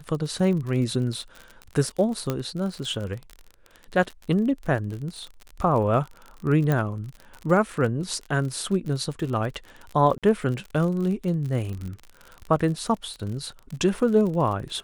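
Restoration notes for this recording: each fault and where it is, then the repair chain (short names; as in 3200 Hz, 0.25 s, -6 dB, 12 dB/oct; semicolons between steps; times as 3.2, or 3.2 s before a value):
crackle 50/s -31 dBFS
2.3 pop -12 dBFS
6.72 pop -12 dBFS
10.18–10.23 gap 47 ms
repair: de-click; interpolate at 10.18, 47 ms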